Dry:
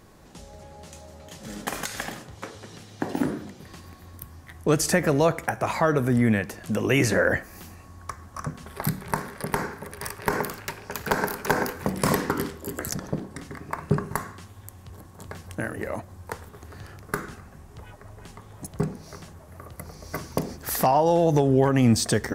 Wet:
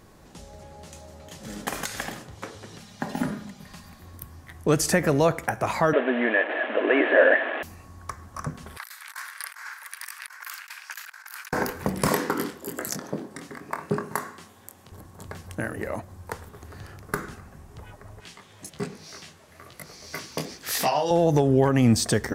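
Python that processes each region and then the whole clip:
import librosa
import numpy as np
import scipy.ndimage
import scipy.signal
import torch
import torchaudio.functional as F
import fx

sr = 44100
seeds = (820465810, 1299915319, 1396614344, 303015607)

y = fx.chain(x, sr, fx.peak_eq(hz=380.0, db=-11.5, octaves=0.57),
    fx.comb(ms=4.9, depth=0.53), at=(2.8, 4.0))
y = fx.chain(y, sr, fx.delta_mod(bps=16000, step_db=-25.5),
    fx.brickwall_highpass(low_hz=240.0),
    fx.small_body(hz=(630.0, 1700.0), ring_ms=25, db=12), at=(5.93, 7.63))
y = fx.chain(y, sr, fx.highpass(hz=1300.0, slope=24),
    fx.over_compress(threshold_db=-39.0, ratio=-0.5), at=(8.77, 11.53))
y = fx.chain(y, sr, fx.highpass(hz=210.0, slope=12),
    fx.doubler(ms=24.0, db=-8.0), at=(12.08, 14.92))
y = fx.chain(y, sr, fx.weighting(curve='D'),
    fx.detune_double(cents=42), at=(18.2, 21.11))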